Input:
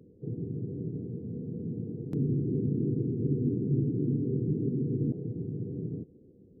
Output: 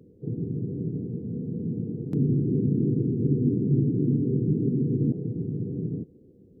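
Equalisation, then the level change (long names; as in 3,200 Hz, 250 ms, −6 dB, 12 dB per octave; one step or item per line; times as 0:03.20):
dynamic equaliser 200 Hz, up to +4 dB, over −40 dBFS, Q 1
+2.5 dB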